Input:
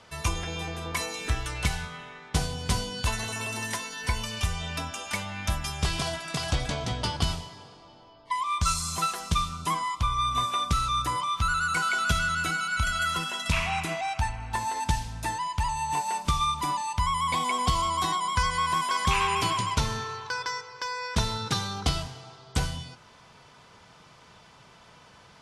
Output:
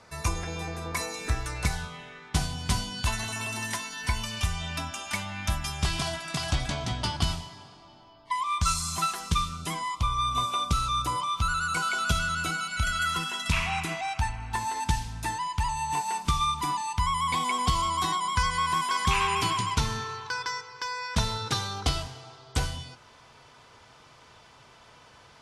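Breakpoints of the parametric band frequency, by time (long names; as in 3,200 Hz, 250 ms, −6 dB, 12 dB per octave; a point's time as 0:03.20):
parametric band −13 dB 0.27 octaves
0:01.70 3,100 Hz
0:02.37 480 Hz
0:09.08 480 Hz
0:10.11 1,800 Hz
0:12.62 1,800 Hz
0:13.06 580 Hz
0:21.00 580 Hz
0:21.49 180 Hz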